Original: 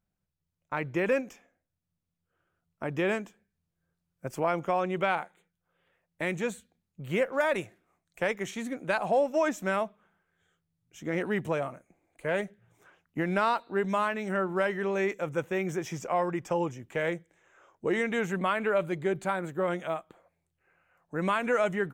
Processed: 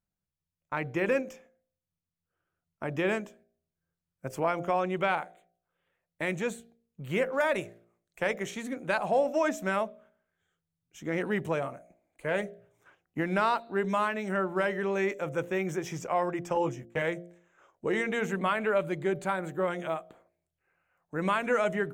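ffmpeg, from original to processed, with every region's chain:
-filter_complex "[0:a]asettb=1/sr,asplit=3[a][b][c];[a]atrim=end=16.554[d];[b]atrim=start=16.55:end=17.02,asetpts=PTS-STARTPTS,afade=t=in:d=0.004:c=qsin,afade=t=out:st=0.466:d=0.004:c=qsin,agate=range=-22dB:threshold=-45dB:ratio=16:release=100:detection=peak,asplit=2[e][f];[f]adelay=14,volume=-4dB[g];[e][g]amix=inputs=2:normalize=0,atrim=end_sample=20727[h];[c]atrim=start=17.016[i];[d][h]acrossfade=d=0.004:c1=hsin:c2=qsin[j];[j][i]acrossfade=d=0.004:c1=qsin:c2=hsin,agate=range=-6dB:threshold=-59dB:ratio=16:detection=peak,bandreject=f=57.9:t=h:w=4,bandreject=f=115.8:t=h:w=4,bandreject=f=173.7:t=h:w=4,bandreject=f=231.6:t=h:w=4,bandreject=f=289.5:t=h:w=4,bandreject=f=347.4:t=h:w=4,bandreject=f=405.3:t=h:w=4,bandreject=f=463.2:t=h:w=4,bandreject=f=521.1:t=h:w=4,bandreject=f=579:t=h:w=4,bandreject=f=636.9:t=h:w=4,bandreject=f=694.8:t=h:w=4,bandreject=f=752.7:t=h:w=4"

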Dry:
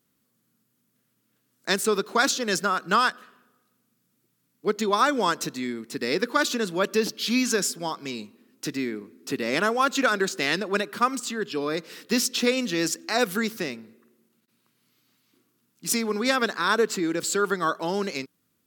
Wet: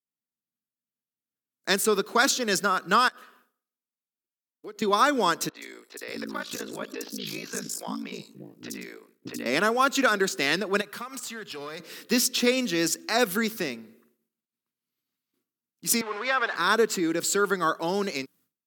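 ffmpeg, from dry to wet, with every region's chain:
-filter_complex "[0:a]asettb=1/sr,asplit=3[a][b][c];[a]atrim=end=3.084[d];[b]atrim=start=3.08:end=4.82,asetpts=PTS-STARTPTS,afade=t=in:d=0.004:c=qsin,afade=t=out:st=1.736:d=0.004:c=qsin,highpass=260,acompressor=threshold=-38dB:ratio=5:attack=3.2:release=140:knee=1:detection=peak[e];[c]atrim=start=4.816[f];[d][e]acrossfade=d=0.004:c1=hsin:c2=qsin[g];[g][f]acrossfade=d=0.004:c1=qsin:c2=hsin,asettb=1/sr,asplit=3[h][i][j];[h]atrim=end=5.494[k];[i]atrim=start=5.49:end=9.46,asetpts=PTS-STARTPTS,afade=t=in:d=0.004:c=qsin,afade=t=out:st=3.966:d=0.004:c=qsin,aeval=exprs='val(0)*sin(2*PI*27*n/s)':c=same,acompressor=threshold=-29dB:ratio=3:attack=3.2:release=140:knee=1:detection=peak,acrossover=split=400|4400[l][m][n];[n]adelay=70[o];[l]adelay=590[p];[p][m][o]amix=inputs=3:normalize=0,atrim=end_sample=175077[q];[j]atrim=start=9.456[r];[k][q]acrossfade=d=0.004:c1=hsin:c2=qsin[s];[s][r]acrossfade=d=0.004:c1=qsin:c2=hsin,asettb=1/sr,asplit=3[t][u][v];[t]atrim=end=10.814[w];[u]atrim=start=10.81:end=11.8,asetpts=PTS-STARTPTS,afade=t=in:d=0.004:c=qsin,afade=t=out:st=0.986:d=0.004:c=qsin,equalizer=f=310:w=1.3:g=-10.5,acompressor=threshold=-32dB:ratio=6:attack=3.2:release=140:knee=1:detection=peak,aeval=exprs='clip(val(0),-1,0.0178)':c=same[x];[v]atrim=start=11.796[y];[w][x]acrossfade=d=0.004:c1=hsin:c2=qsin[z];[z][y]acrossfade=d=0.004:c1=qsin:c2=hsin,asettb=1/sr,asplit=3[aa][ab][ac];[aa]atrim=end=16.014[ad];[ab]atrim=start=16.01:end=16.56,asetpts=PTS-STARTPTS,afade=t=in:d=0.004:c=qsin,afade=t=out:st=0.546:d=0.004:c=qsin,aeval=exprs='val(0)+0.5*0.0447*sgn(val(0))':c=same,highpass=750,lowpass=2.4k[ae];[ac]atrim=start=16.556[af];[ad][ae]acrossfade=d=0.004:c1=hsin:c2=qsin[ag];[ag][af]acrossfade=d=0.004:c1=qsin:c2=hsin,highpass=120,agate=range=-33dB:threshold=-55dB:ratio=3:detection=peak,equalizer=f=14k:w=0.74:g=4.5"

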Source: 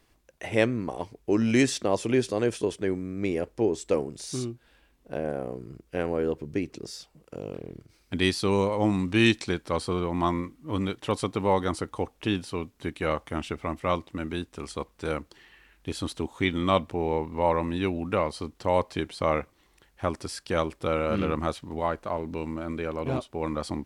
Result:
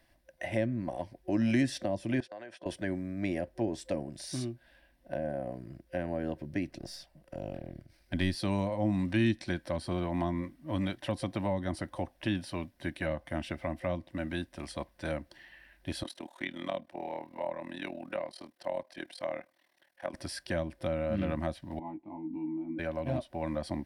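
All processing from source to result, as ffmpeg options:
-filter_complex "[0:a]asettb=1/sr,asplit=3[a][b][c];[a]atrim=end=2.204[d];[b]atrim=start=2.2:end=2.66,asetpts=PTS-STARTPTS,afade=t=in:d=0.004:c=qsin,afade=t=out:st=0.456:d=0.004:c=qsin,agate=range=-30dB:threshold=-38dB:ratio=16:release=100:detection=peak,bandpass=f=1.3k:t=q:w=0.58,acompressor=threshold=-40dB:ratio=4:attack=3.2:release=140:knee=1:detection=peak[e];[c]atrim=start=2.656[f];[d][e]acrossfade=d=0.004:c1=hsin:c2=qsin[g];[g][f]acrossfade=d=0.004:c1=qsin:c2=hsin,asettb=1/sr,asplit=3[h][i][j];[h]atrim=end=6.684[k];[i]atrim=start=6.68:end=8.35,asetpts=PTS-STARTPTS,afade=t=in:d=0.004:c=qsin,afade=t=out:st=1.666:d=0.004:c=qsin,aeval=exprs='if(lt(val(0),0),0.708*val(0),val(0))':c=same,lowshelf=f=130:g=5[l];[j]atrim=start=8.346[m];[k][l]acrossfade=d=0.004:c1=hsin:c2=qsin[n];[n][m]acrossfade=d=0.004:c1=qsin:c2=hsin,asettb=1/sr,asplit=3[o][p][q];[o]atrim=end=16.034[r];[p]atrim=start=16.03:end=20.14,asetpts=PTS-STARTPTS,afade=t=in:d=0.004:c=qsin,afade=t=out:st=4.106:d=0.004:c=qsin,highpass=230,lowshelf=f=350:g=-6,tremolo=f=39:d=0.889[s];[q]atrim=start=20.136[t];[r][s]acrossfade=d=0.004:c1=hsin:c2=qsin[u];[u][t]acrossfade=d=0.004:c1=qsin:c2=hsin,asettb=1/sr,asplit=3[v][w][x];[v]atrim=end=21.794[y];[w]atrim=start=21.79:end=22.79,asetpts=PTS-STARTPTS,afade=t=in:d=0.004:c=qsin,afade=t=out:st=0.996:d=0.004:c=qsin,asplit=3[z][aa][ab];[z]bandpass=f=300:t=q:w=8,volume=0dB[ac];[aa]bandpass=f=870:t=q:w=8,volume=-6dB[ad];[ab]bandpass=f=2.24k:t=q:w=8,volume=-9dB[ae];[ac][ad][ae]amix=inputs=3:normalize=0,tiltshelf=f=640:g=9.5,asplit=2[af][ag];[ag]adelay=19,volume=-4dB[ah];[af][ah]amix=inputs=2:normalize=0,atrim=end_sample=44100[ai];[x]atrim=start=22.786[aj];[y][ai]acrossfade=d=0.004:c1=hsin:c2=qsin[ak];[ak][aj]acrossfade=d=0.004:c1=qsin:c2=hsin,superequalizer=7b=0.282:8b=2.24:10b=0.562:11b=1.78:15b=0.447,acrossover=split=330[al][am];[am]acompressor=threshold=-30dB:ratio=10[an];[al][an]amix=inputs=2:normalize=0,volume=-3dB"

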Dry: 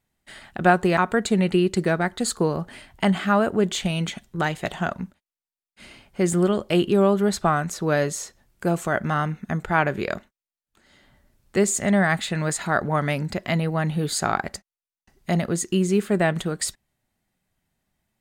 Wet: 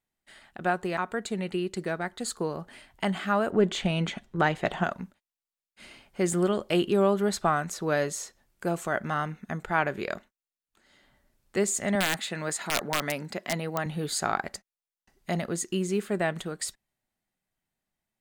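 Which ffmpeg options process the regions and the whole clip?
-filter_complex "[0:a]asettb=1/sr,asplit=3[a][b][c];[a]atrim=end=3.514[d];[b]atrim=start=3.51:end=4.84,asetpts=PTS-STARTPTS,afade=t=in:d=0.004:c=qsin,afade=t=out:st=1.326:d=0.004:c=qsin,lowpass=f=2.1k:p=1,acontrast=39[e];[c]atrim=start=4.836[f];[d][e]acrossfade=d=0.004:c1=hsin:c2=qsin[g];[g][f]acrossfade=d=0.004:c1=qsin:c2=hsin,asettb=1/sr,asplit=3[h][i][j];[h]atrim=end=11.954[k];[i]atrim=start=11.95:end=13.86,asetpts=PTS-STARTPTS,afade=t=in:d=0.004:c=qsin,afade=t=out:st=1.906:d=0.004:c=qsin,highpass=170,aeval=exprs='(mod(3.98*val(0)+1,2)-1)/3.98':c=same[l];[j]atrim=start=13.856[m];[k][l]acrossfade=d=0.004:c1=hsin:c2=qsin[n];[n][m]acrossfade=d=0.004:c1=qsin:c2=hsin,equalizer=f=81:w=0.46:g=-6.5,dynaudnorm=f=560:g=9:m=11.5dB,volume=-9dB"

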